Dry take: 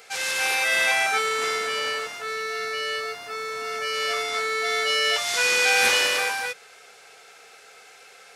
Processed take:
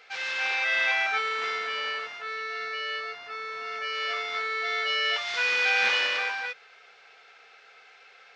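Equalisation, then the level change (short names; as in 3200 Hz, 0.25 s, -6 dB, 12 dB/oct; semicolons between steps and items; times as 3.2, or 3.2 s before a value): Gaussian blur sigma 2.2 samples; tilt shelf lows -6.5 dB, about 810 Hz; -5.5 dB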